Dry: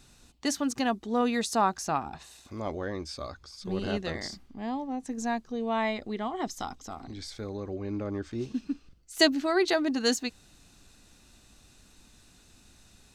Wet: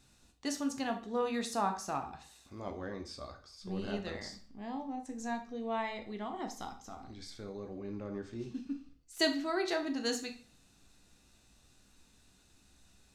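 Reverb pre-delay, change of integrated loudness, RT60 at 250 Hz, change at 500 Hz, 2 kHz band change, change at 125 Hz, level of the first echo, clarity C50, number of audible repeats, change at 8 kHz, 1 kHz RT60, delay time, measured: 10 ms, -7.0 dB, 0.45 s, -7.0 dB, -7.5 dB, -7.5 dB, none, 11.0 dB, none, -7.5 dB, 0.45 s, none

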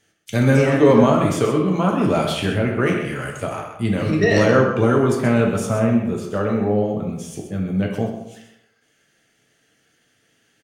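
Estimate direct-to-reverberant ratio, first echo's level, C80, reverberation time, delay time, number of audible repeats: -1.0 dB, -8.5 dB, 5.5 dB, 0.85 s, 0.128 s, 1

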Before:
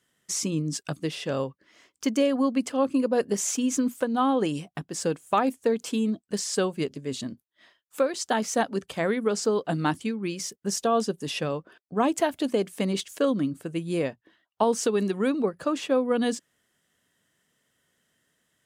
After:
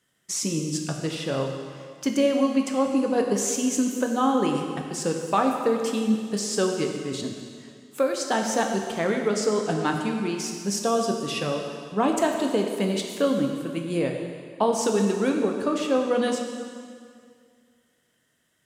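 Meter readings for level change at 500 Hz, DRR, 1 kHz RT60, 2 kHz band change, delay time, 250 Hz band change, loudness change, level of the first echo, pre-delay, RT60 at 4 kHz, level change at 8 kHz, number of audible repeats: +2.0 dB, 2.0 dB, 2.1 s, +2.0 dB, none, +2.0 dB, +2.0 dB, none, 4 ms, 1.9 s, +2.0 dB, none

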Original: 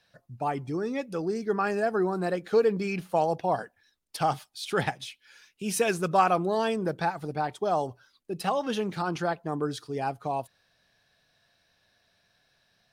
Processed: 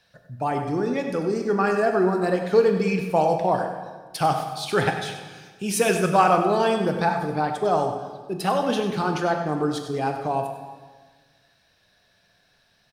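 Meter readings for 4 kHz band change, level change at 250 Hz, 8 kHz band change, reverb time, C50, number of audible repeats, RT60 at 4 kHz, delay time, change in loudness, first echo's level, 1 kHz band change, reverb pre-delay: +5.5 dB, +6.5 dB, +5.0 dB, 1.5 s, 5.5 dB, 1, 1.2 s, 97 ms, +5.5 dB, -10.5 dB, +5.5 dB, 14 ms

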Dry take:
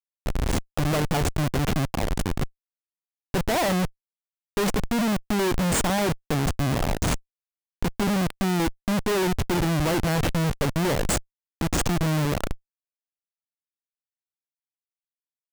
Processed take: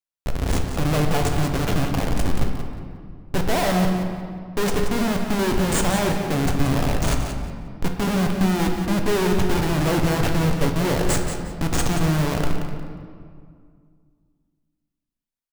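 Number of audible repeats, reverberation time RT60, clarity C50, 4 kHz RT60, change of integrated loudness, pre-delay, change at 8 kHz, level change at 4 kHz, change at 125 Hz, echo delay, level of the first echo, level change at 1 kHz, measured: 2, 2.1 s, 3.5 dB, 1.3 s, +2.5 dB, 7 ms, +1.0 dB, +2.0 dB, +3.5 dB, 0.179 s, -9.0 dB, +2.5 dB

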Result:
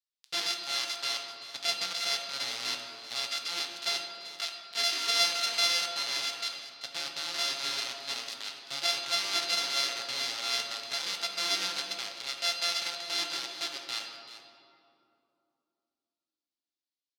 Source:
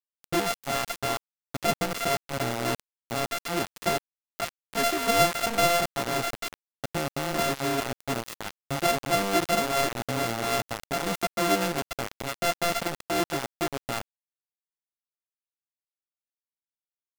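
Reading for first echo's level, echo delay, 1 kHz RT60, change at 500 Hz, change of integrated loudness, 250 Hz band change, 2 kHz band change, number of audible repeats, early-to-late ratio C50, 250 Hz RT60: -14.0 dB, 0.387 s, 2.5 s, -16.0 dB, -2.5 dB, -21.0 dB, -4.0 dB, 1, 4.0 dB, 3.6 s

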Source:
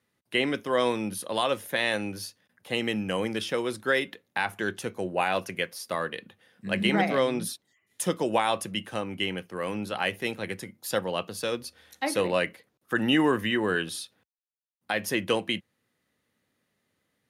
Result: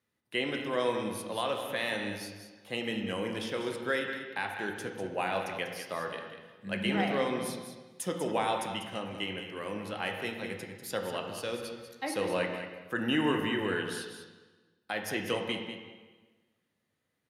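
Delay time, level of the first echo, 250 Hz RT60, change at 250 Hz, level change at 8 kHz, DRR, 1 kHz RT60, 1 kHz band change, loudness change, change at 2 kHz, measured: 0.194 s, -10.0 dB, 1.5 s, -5.0 dB, -6.5 dB, 2.5 dB, 1.3 s, -4.5 dB, -5.0 dB, -5.0 dB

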